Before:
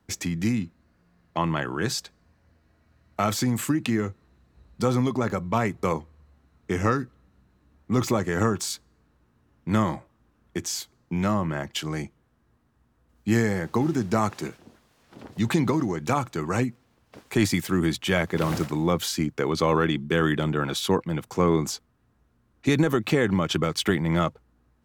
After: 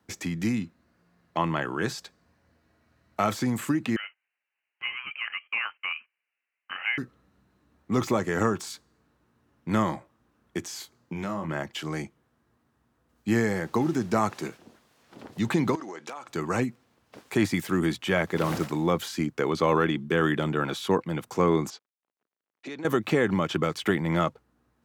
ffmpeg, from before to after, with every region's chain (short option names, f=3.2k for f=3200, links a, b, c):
-filter_complex "[0:a]asettb=1/sr,asplit=3[a][b][c];[a]atrim=end=3.964[d];[b]atrim=start=3.96:end=6.98,asetpts=PTS-STARTPTS,afade=t=in:d=0.004:c=qsin,afade=t=out:st=3.016:d=0.004:c=qsin,highpass=f=620:w=0.5412,highpass=f=620:w=1.3066,lowpass=f=2.9k:t=q:w=0.5098,lowpass=f=2.9k:t=q:w=0.6013,lowpass=f=2.9k:t=q:w=0.9,lowpass=f=2.9k:t=q:w=2.563,afreqshift=-3400,agate=range=-13dB:threshold=-58dB:ratio=16:release=100:detection=peak[e];[c]atrim=start=6.976[f];[d][e]acrossfade=d=0.004:c1=hsin:c2=qsin[g];[g][f]acrossfade=d=0.004:c1=qsin:c2=hsin,asettb=1/sr,asplit=3[h][i][j];[h]atrim=end=10.784[k];[i]atrim=start=10.78:end=11.49,asetpts=PTS-STARTPTS,afade=t=in:d=0.004:c=qsin,afade=t=out:st=0.706:d=0.004:c=qsin,asplit=2[l][m];[m]adelay=25,volume=-7dB[n];[l][n]amix=inputs=2:normalize=0,atrim=end_sample=31311,acompressor=threshold=-27dB:ratio=4:attack=3.2:release=140:knee=1:detection=peak[o];[j]atrim=start=11.486[p];[k][o]acrossfade=d=0.004:c1=hsin:c2=qsin[q];[q][p]acrossfade=d=0.004:c1=qsin:c2=hsin,asettb=1/sr,asplit=3[r][s][t];[r]atrim=end=15.754[u];[s]atrim=start=15.75:end=16.29,asetpts=PTS-STARTPTS,afade=t=in:d=0.004:c=qsin,afade=t=out:st=0.536:d=0.004:c=qsin,highpass=450,lowpass=7.7k,acompressor=threshold=-33dB:ratio=12:attack=3.2:release=140:knee=1:detection=peak,aeval=exprs='0.0422*(abs(mod(val(0)/0.0422+3,4)-2)-1)':c=same[v];[t]atrim=start=16.286[w];[u][v]acrossfade=d=0.004:c1=hsin:c2=qsin[x];[x][w]acrossfade=d=0.004:c1=qsin:c2=hsin,asettb=1/sr,asplit=3[y][z][aa];[y]atrim=end=21.704[ab];[z]atrim=start=21.7:end=22.85,asetpts=PTS-STARTPTS,afade=t=in:d=0.004:c=qsin,afade=t=out:st=1.146:d=0.004:c=qsin,acompressor=threshold=-32dB:ratio=4:attack=3.2:release=140:knee=1:detection=peak,aeval=exprs='sgn(val(0))*max(abs(val(0))-0.00106,0)':c=same,highpass=260,lowpass=4.9k[ac];[aa]atrim=start=22.846[ad];[ab][ac]acrossfade=d=0.004:c1=hsin:c2=qsin[ae];[ae][ad]acrossfade=d=0.004:c1=qsin:c2=hsin,acrossover=split=2500[af][ag];[ag]acompressor=threshold=-36dB:ratio=4:attack=1:release=60[ah];[af][ah]amix=inputs=2:normalize=0,highpass=f=170:p=1"